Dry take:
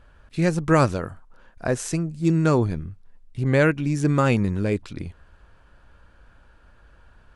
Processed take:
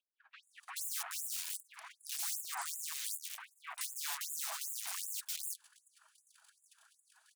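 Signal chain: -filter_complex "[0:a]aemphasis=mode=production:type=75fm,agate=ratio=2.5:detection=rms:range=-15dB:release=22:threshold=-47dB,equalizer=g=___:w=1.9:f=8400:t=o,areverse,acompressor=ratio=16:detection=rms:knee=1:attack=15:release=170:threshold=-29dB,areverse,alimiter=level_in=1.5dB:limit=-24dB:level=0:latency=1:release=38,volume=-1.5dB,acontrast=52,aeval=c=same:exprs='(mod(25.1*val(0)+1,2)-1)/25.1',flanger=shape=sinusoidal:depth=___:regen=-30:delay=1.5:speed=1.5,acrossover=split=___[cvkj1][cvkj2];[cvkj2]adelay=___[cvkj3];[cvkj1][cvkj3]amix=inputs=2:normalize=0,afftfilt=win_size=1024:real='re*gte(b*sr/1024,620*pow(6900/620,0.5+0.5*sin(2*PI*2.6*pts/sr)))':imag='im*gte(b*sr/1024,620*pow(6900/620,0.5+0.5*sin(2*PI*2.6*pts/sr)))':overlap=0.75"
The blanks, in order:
9.5, 5.6, 2300, 430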